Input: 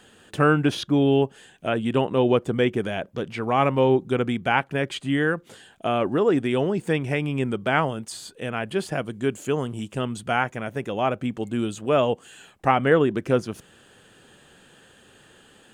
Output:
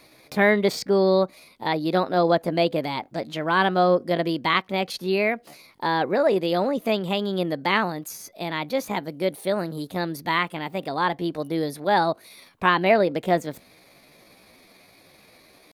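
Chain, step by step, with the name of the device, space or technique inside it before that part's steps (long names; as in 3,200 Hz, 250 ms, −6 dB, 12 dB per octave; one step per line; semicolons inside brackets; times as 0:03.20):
chipmunk voice (pitch shifter +5.5 semitones)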